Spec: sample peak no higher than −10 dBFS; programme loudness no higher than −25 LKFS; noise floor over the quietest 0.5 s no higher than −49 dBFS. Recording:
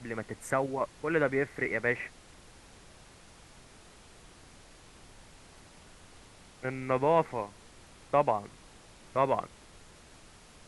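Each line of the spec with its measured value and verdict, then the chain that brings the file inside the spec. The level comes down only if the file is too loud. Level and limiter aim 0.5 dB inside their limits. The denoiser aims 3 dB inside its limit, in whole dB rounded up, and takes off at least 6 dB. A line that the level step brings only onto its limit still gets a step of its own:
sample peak −12.0 dBFS: in spec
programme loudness −31.0 LKFS: in spec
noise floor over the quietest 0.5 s −54 dBFS: in spec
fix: no processing needed

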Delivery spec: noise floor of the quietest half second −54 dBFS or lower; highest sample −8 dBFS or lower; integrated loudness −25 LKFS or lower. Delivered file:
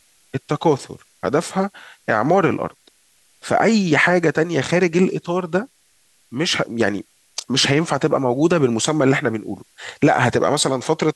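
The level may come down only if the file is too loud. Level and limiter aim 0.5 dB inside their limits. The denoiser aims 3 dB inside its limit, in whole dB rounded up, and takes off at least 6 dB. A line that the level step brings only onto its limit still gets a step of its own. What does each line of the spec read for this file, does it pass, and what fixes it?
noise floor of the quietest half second −59 dBFS: in spec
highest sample −4.5 dBFS: out of spec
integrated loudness −18.5 LKFS: out of spec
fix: level −7 dB

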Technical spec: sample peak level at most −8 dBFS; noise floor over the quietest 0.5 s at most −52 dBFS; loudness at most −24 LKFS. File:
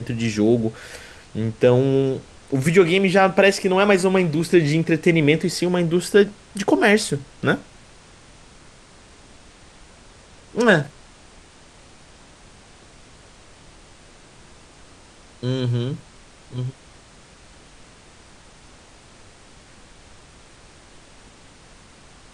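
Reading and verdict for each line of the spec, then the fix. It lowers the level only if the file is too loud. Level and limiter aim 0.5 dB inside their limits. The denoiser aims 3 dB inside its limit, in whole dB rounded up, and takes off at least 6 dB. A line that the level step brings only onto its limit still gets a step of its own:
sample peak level −3.0 dBFS: out of spec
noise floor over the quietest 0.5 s −48 dBFS: out of spec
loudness −19.5 LKFS: out of spec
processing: level −5 dB
brickwall limiter −8.5 dBFS

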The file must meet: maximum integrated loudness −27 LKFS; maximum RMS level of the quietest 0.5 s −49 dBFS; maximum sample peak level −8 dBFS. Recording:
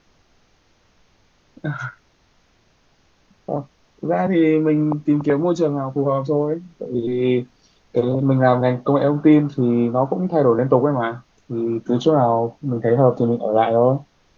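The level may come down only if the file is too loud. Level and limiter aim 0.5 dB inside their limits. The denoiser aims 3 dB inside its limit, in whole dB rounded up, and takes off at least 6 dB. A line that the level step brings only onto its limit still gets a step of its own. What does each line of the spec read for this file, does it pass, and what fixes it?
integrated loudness −19.0 LKFS: out of spec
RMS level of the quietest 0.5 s −59 dBFS: in spec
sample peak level −2.0 dBFS: out of spec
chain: level −8.5 dB

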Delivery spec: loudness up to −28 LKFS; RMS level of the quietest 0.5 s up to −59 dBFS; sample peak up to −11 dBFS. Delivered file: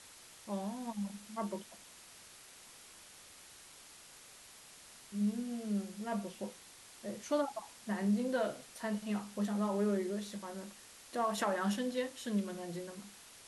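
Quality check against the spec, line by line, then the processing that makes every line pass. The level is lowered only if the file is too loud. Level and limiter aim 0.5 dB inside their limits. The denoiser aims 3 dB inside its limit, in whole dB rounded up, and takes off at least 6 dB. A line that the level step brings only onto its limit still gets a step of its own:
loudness −37.5 LKFS: in spec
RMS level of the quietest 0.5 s −56 dBFS: out of spec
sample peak −20.5 dBFS: in spec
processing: broadband denoise 6 dB, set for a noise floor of −56 dBFS

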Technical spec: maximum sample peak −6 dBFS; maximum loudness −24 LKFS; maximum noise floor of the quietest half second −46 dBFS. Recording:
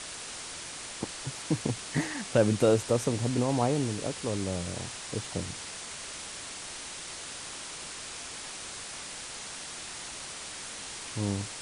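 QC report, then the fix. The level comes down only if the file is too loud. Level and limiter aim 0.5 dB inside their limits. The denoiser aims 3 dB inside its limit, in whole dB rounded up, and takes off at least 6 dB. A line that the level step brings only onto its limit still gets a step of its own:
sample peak −10.5 dBFS: in spec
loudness −32.5 LKFS: in spec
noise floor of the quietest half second −41 dBFS: out of spec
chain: broadband denoise 8 dB, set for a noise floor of −41 dBFS

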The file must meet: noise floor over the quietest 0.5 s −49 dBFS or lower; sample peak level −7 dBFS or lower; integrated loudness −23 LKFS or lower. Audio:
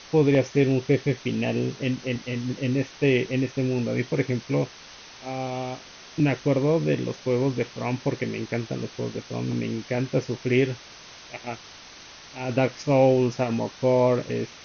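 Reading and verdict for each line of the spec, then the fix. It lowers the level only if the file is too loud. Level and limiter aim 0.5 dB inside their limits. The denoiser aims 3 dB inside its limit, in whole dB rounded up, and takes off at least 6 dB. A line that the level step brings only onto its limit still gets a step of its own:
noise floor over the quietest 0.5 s −45 dBFS: out of spec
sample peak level −7.5 dBFS: in spec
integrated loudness −25.0 LKFS: in spec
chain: broadband denoise 7 dB, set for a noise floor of −45 dBFS

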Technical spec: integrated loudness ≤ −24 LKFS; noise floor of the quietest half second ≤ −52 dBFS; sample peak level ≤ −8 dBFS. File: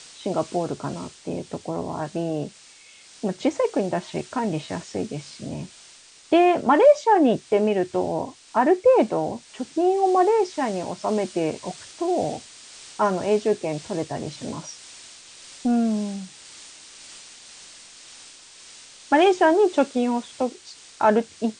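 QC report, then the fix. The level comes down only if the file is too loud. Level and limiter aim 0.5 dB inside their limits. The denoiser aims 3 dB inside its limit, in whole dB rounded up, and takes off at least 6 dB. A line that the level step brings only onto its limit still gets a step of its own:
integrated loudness −23.0 LKFS: out of spec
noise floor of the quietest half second −49 dBFS: out of spec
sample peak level −5.5 dBFS: out of spec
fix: broadband denoise 6 dB, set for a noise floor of −49 dBFS
level −1.5 dB
brickwall limiter −8.5 dBFS

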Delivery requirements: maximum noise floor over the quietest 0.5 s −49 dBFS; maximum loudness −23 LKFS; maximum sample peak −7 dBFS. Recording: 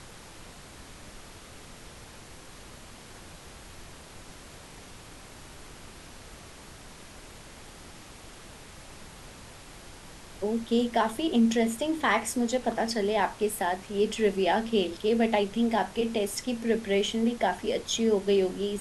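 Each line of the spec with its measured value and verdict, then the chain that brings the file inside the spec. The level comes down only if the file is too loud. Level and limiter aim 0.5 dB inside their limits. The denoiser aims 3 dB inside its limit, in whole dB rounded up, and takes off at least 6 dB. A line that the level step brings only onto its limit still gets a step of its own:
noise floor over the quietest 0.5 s −47 dBFS: out of spec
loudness −27.0 LKFS: in spec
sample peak −11.5 dBFS: in spec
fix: broadband denoise 6 dB, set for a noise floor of −47 dBFS

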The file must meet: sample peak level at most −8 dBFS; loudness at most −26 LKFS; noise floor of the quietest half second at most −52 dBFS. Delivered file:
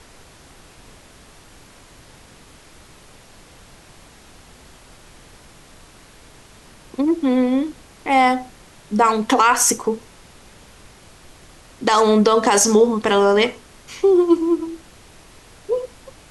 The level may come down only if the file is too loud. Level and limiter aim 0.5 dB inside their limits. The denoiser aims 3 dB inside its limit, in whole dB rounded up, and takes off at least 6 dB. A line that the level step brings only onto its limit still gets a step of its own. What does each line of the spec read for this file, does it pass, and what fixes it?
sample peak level −4.5 dBFS: out of spec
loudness −17.5 LKFS: out of spec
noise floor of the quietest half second −46 dBFS: out of spec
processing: level −9 dB

